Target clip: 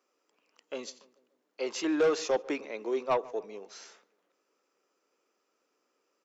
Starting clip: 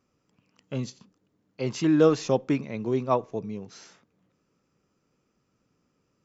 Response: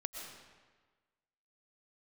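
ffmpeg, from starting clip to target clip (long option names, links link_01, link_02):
-filter_complex "[0:a]highpass=frequency=370:width=0.5412,highpass=frequency=370:width=1.3066,asoftclip=type=tanh:threshold=-19.5dB,asplit=2[link_01][link_02];[link_02]adelay=145,lowpass=frequency=2000:poles=1,volume=-20.5dB,asplit=2[link_03][link_04];[link_04]adelay=145,lowpass=frequency=2000:poles=1,volume=0.51,asplit=2[link_05][link_06];[link_06]adelay=145,lowpass=frequency=2000:poles=1,volume=0.51,asplit=2[link_07][link_08];[link_08]adelay=145,lowpass=frequency=2000:poles=1,volume=0.51[link_09];[link_01][link_03][link_05][link_07][link_09]amix=inputs=5:normalize=0"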